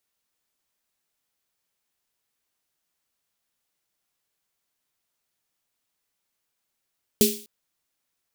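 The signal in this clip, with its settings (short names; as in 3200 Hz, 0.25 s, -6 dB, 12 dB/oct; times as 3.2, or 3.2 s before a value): snare drum length 0.25 s, tones 220 Hz, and 410 Hz, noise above 2800 Hz, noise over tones -2.5 dB, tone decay 0.34 s, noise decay 0.44 s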